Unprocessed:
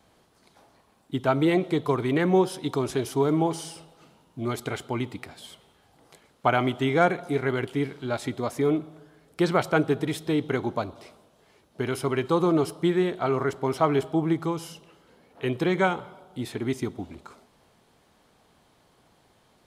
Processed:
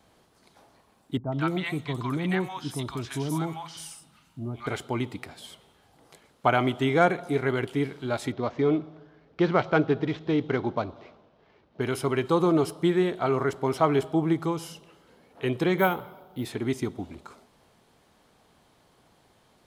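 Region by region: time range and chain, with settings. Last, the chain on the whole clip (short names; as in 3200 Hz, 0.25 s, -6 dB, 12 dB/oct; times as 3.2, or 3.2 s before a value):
1.17–4.67 bell 450 Hz -12.5 dB 1.1 oct + three bands offset in time lows, mids, highs 0.15/0.24 s, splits 800/5600 Hz
8.32–11.81 median filter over 9 samples + steep low-pass 5600 Hz
15.78–16.45 high shelf 6700 Hz -6.5 dB + careless resampling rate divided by 3×, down filtered, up hold
whole clip: dry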